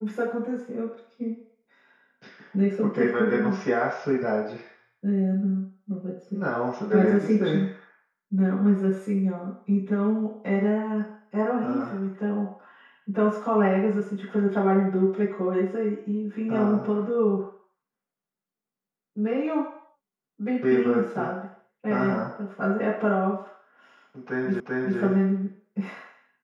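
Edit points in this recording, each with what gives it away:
0:24.60: the same again, the last 0.39 s

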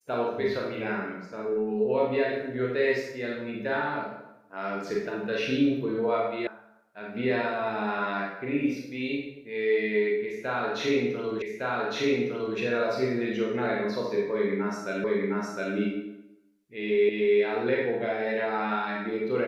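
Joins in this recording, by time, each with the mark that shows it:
0:06.47: cut off before it has died away
0:11.42: the same again, the last 1.16 s
0:15.04: the same again, the last 0.71 s
0:17.09: the same again, the last 0.3 s

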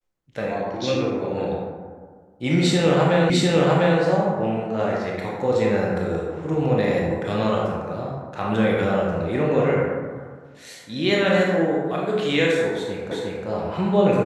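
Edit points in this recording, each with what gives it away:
0:03.30: the same again, the last 0.7 s
0:13.11: the same again, the last 0.36 s

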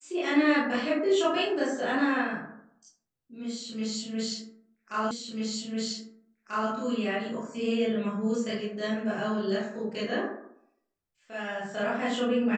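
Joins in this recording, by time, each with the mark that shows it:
0:05.11: the same again, the last 1.59 s

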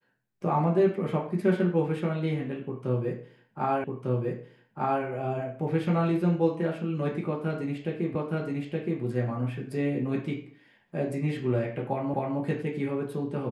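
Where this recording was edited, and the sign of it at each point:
0:03.84: the same again, the last 1.2 s
0:08.15: the same again, the last 0.87 s
0:12.14: the same again, the last 0.26 s

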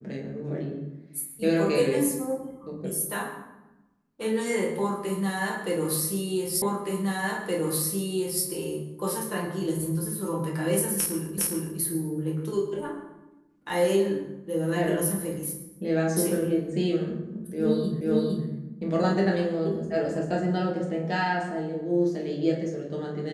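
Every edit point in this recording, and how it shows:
0:06.62: the same again, the last 1.82 s
0:11.38: the same again, the last 0.41 s
0:18.01: the same again, the last 0.46 s

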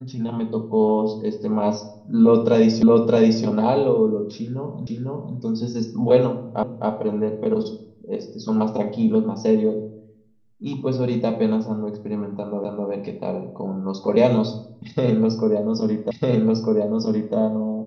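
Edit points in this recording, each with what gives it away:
0:02.83: the same again, the last 0.62 s
0:04.87: the same again, the last 0.5 s
0:06.63: the same again, the last 0.26 s
0:12.64: the same again, the last 0.26 s
0:16.11: the same again, the last 1.25 s

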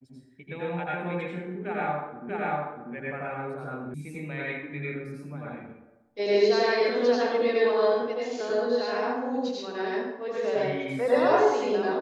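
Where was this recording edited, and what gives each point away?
0:02.29: the same again, the last 0.64 s
0:03.94: cut off before it has died away

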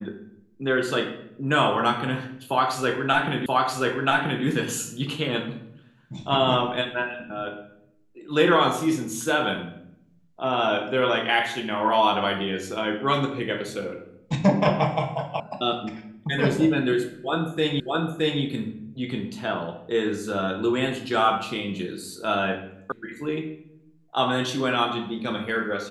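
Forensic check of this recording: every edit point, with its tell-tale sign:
0:03.46: the same again, the last 0.98 s
0:15.40: cut off before it has died away
0:17.80: the same again, the last 0.62 s
0:22.92: cut off before it has died away

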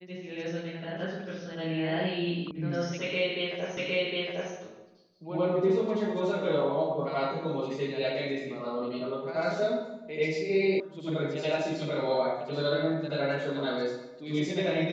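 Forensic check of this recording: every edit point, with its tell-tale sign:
0:02.51: cut off before it has died away
0:03.77: the same again, the last 0.76 s
0:10.80: cut off before it has died away

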